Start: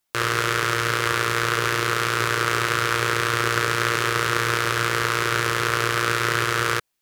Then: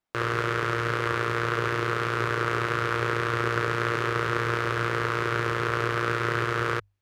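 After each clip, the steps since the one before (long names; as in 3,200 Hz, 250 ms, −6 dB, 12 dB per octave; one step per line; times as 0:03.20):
low-pass filter 1,200 Hz 6 dB per octave
mains-hum notches 50/100 Hz
level −1 dB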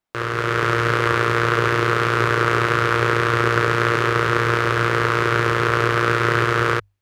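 automatic gain control gain up to 7 dB
level +2 dB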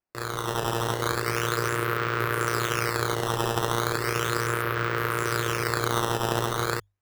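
sample-and-hold swept by an LFO 11×, swing 160% 0.36 Hz
level −8 dB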